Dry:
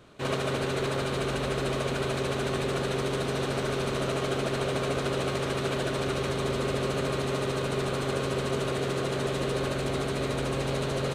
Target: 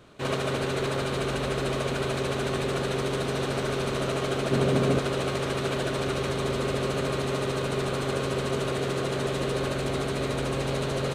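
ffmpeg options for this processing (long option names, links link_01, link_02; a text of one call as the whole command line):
ffmpeg -i in.wav -filter_complex "[0:a]asettb=1/sr,asplit=3[link_01][link_02][link_03];[link_01]atrim=end=4.514[link_04];[link_02]atrim=start=4.51:end=4.99,asetpts=PTS-STARTPTS,afade=type=in:duration=0.004:curve=qsin,afade=type=out:start_time=0.476:duration=0.004:curve=qsin,equalizer=frequency=200:width=0.69:gain=9.5[link_05];[link_03]atrim=start=4.986[link_06];[link_04][link_05]acrossfade=duration=0.004:curve1=hsin:curve2=qsin[link_07];[link_07][link_06]acrossfade=duration=0.004:curve1=qsin:curve2=hsin,volume=1dB" out.wav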